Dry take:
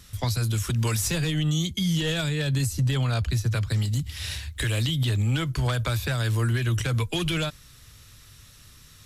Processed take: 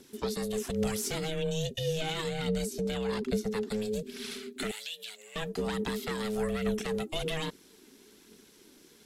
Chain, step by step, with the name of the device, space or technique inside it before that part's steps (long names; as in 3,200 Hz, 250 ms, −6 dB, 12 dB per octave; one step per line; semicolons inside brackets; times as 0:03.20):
alien voice (ring modulation 320 Hz; flanger 1.2 Hz, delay 0 ms, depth 3.8 ms, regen +60%)
0:04.71–0:05.36: Bessel high-pass filter 2,200 Hz, order 2